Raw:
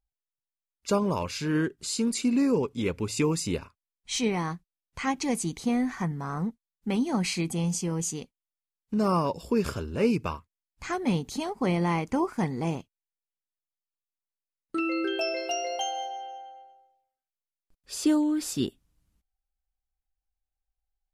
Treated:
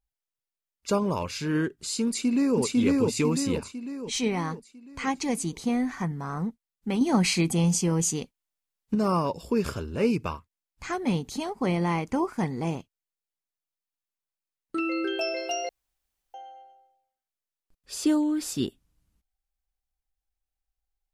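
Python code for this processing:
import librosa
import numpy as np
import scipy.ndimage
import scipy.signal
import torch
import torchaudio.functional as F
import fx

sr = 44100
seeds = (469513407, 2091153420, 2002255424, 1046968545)

y = fx.echo_throw(x, sr, start_s=2.07, length_s=0.52, ms=500, feedback_pct=50, wet_db=0.0)
y = fx.edit(y, sr, fx.clip_gain(start_s=7.01, length_s=1.94, db=5.0),
    fx.room_tone_fill(start_s=15.69, length_s=0.65), tone=tone)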